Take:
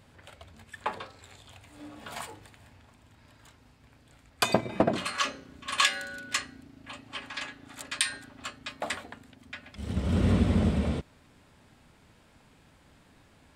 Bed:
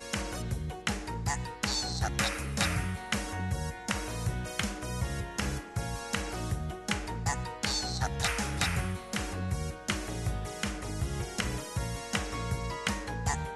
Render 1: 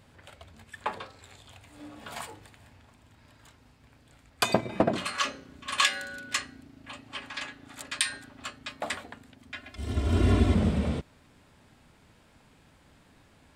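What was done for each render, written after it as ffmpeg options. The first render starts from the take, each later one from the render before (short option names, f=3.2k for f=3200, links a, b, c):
-filter_complex "[0:a]asettb=1/sr,asplit=3[a][b][c];[a]atrim=end=9.544[d];[b]atrim=start=9.54:end=10.54,asetpts=PTS-STARTPTS,afade=t=in:d=0.004:c=qsin,afade=t=out:st=0.996:d=0.004:c=qsin,aecho=1:1:2.9:0.94,atrim=end_sample=44100[e];[c]atrim=start=10.536[f];[d][e]acrossfade=d=0.004:c1=hsin:c2=qsin[g];[g][f]acrossfade=d=0.004:c1=qsin:c2=hsin"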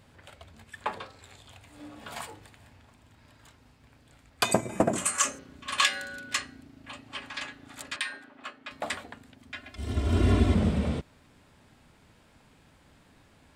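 -filter_complex "[0:a]asettb=1/sr,asplit=3[a][b][c];[a]atrim=end=4.514[d];[b]atrim=start=4.51:end=5.39,asetpts=PTS-STARTPTS,afade=t=in:d=0.004:c=qsin,afade=t=out:st=0.876:d=0.004:c=qsin,highshelf=f=5.6k:t=q:w=3:g=10.5[e];[c]atrim=start=5.386[f];[d][e]acrossfade=d=0.004:c1=hsin:c2=qsin[g];[g][f]acrossfade=d=0.004:c1=qsin:c2=hsin,asettb=1/sr,asplit=3[h][i][j];[h]atrim=end=7.964[k];[i]atrim=start=7.96:end=8.71,asetpts=PTS-STARTPTS,afade=t=in:d=0.004:c=qsin,afade=t=out:st=0.746:d=0.004:c=qsin,acrossover=split=220 3100:gain=0.0891 1 0.224[l][m][n];[l][m][n]amix=inputs=3:normalize=0[o];[j]atrim=start=8.706[p];[k][o]acrossfade=d=0.004:c1=hsin:c2=qsin[q];[q][p]acrossfade=d=0.004:c1=qsin:c2=hsin"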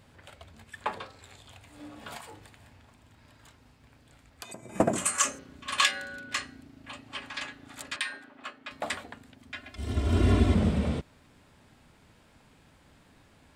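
-filter_complex "[0:a]asplit=3[a][b][c];[a]afade=t=out:st=2.16:d=0.02[d];[b]acompressor=threshold=-41dB:ratio=6:attack=3.2:release=140:knee=1:detection=peak,afade=t=in:st=2.16:d=0.02,afade=t=out:st=4.74:d=0.02[e];[c]afade=t=in:st=4.74:d=0.02[f];[d][e][f]amix=inputs=3:normalize=0,asettb=1/sr,asplit=3[g][h][i];[g]atrim=end=5.914[j];[h]atrim=start=5.91:end=6.37,asetpts=PTS-STARTPTS,afade=t=in:d=0.004:c=qsin,afade=t=out:st=0.456:d=0.004:c=qsin,highshelf=f=3.9k:g=-7[k];[i]atrim=start=6.366[l];[j][k]acrossfade=d=0.004:c1=hsin:c2=qsin[m];[m][l]acrossfade=d=0.004:c1=qsin:c2=hsin"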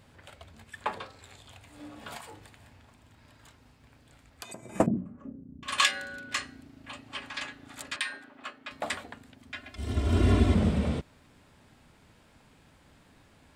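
-filter_complex "[0:a]asettb=1/sr,asplit=3[a][b][c];[a]atrim=end=4.864[d];[b]atrim=start=4.86:end=5.63,asetpts=PTS-STARTPTS,afade=t=in:d=0.004:c=qsin,afade=t=out:st=0.766:d=0.004:c=qsin,lowpass=f=220:t=q:w=2.1[e];[c]atrim=start=5.626[f];[d][e]acrossfade=d=0.004:c1=hsin:c2=qsin[g];[g][f]acrossfade=d=0.004:c1=qsin:c2=hsin"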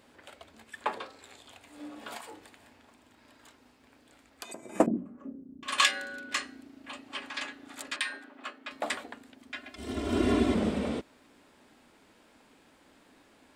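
-af "lowshelf=f=190:t=q:w=1.5:g=-11.5"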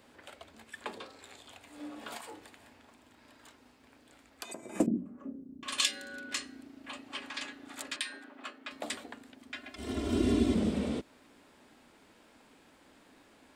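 -filter_complex "[0:a]acrossover=split=420|3000[a][b][c];[b]acompressor=threshold=-41dB:ratio=10[d];[a][d][c]amix=inputs=3:normalize=0"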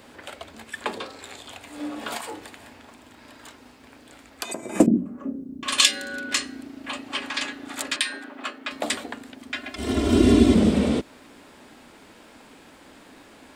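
-af "volume=11.5dB"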